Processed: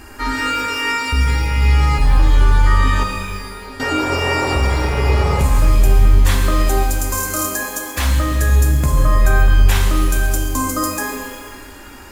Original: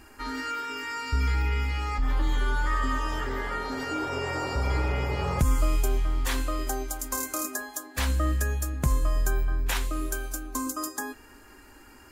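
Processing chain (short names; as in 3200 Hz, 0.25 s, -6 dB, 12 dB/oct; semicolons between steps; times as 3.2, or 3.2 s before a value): 3.03–3.8 level quantiser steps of 24 dB; 8.97–9.54 bell 1200 Hz +9.5 dB 2.7 oct; maximiser +21 dB; shimmer reverb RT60 1.6 s, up +12 st, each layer -8 dB, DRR 2.5 dB; gain -9.5 dB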